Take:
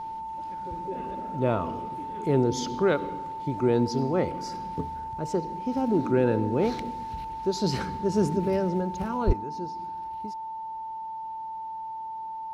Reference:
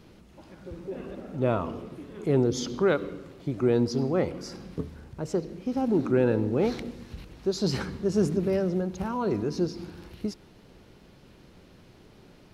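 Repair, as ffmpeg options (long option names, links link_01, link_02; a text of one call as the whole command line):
ffmpeg -i in.wav -filter_complex "[0:a]bandreject=frequency=890:width=30,asplit=3[link_01][link_02][link_03];[link_01]afade=type=out:start_time=9.26:duration=0.02[link_04];[link_02]highpass=frequency=140:width=0.5412,highpass=frequency=140:width=1.3066,afade=type=in:start_time=9.26:duration=0.02,afade=type=out:start_time=9.38:duration=0.02[link_05];[link_03]afade=type=in:start_time=9.38:duration=0.02[link_06];[link_04][link_05][link_06]amix=inputs=3:normalize=0,asetnsamples=nb_out_samples=441:pad=0,asendcmd='9.33 volume volume 10dB',volume=0dB" out.wav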